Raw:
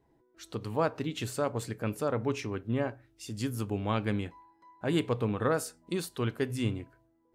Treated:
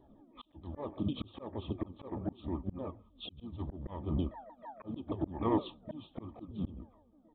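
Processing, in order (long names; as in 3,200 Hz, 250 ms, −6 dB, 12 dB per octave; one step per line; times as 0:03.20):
pitch shifter swept by a sawtooth −8.5 semitones, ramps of 155 ms
comb filter 3.4 ms, depth 40%
dynamic equaliser 1,800 Hz, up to −6 dB, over −56 dBFS, Q 2.7
in parallel at −7 dB: hard clipping −29 dBFS, distortion −9 dB
on the sum: linear-phase brick-wall band-stop 1,300–3,000 Hz
pitch-shifted copies added −4 semitones −11 dB, +12 semitones −18 dB
downsampling to 8,000 Hz
volume swells 639 ms
level +4.5 dB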